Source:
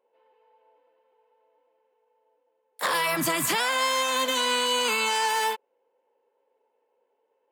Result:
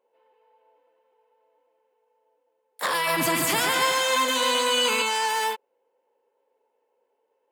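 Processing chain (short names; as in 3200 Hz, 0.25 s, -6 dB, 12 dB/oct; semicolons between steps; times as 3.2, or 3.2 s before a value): 2.93–5.02 bouncing-ball echo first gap 0.14 s, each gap 0.9×, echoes 5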